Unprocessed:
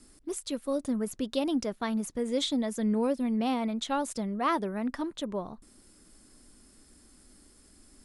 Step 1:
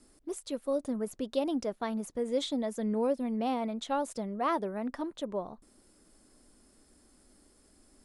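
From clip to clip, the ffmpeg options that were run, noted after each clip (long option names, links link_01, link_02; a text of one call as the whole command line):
ffmpeg -i in.wav -af "equalizer=frequency=600:width_type=o:width=1.7:gain=7,volume=-6dB" out.wav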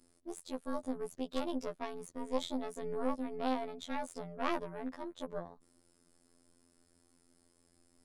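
ffmpeg -i in.wav -af "aeval=exprs='0.141*(cos(1*acos(clip(val(0)/0.141,-1,1)))-cos(1*PI/2))+0.0501*(cos(4*acos(clip(val(0)/0.141,-1,1)))-cos(4*PI/2))+0.01*(cos(6*acos(clip(val(0)/0.141,-1,1)))-cos(6*PI/2))':channel_layout=same,afftfilt=real='hypot(re,im)*cos(PI*b)':imag='0':win_size=2048:overlap=0.75,volume=-3.5dB" out.wav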